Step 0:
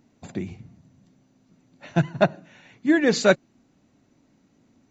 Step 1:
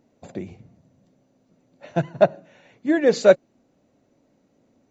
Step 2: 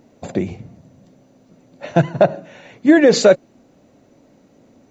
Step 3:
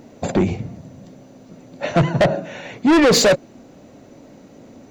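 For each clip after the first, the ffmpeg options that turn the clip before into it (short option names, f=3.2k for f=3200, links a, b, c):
-af "equalizer=f=540:w=1.5:g=11,volume=-4.5dB"
-af "alimiter=level_in=12.5dB:limit=-1dB:release=50:level=0:latency=1,volume=-1dB"
-af "asoftclip=type=tanh:threshold=-18.5dB,volume=8dB"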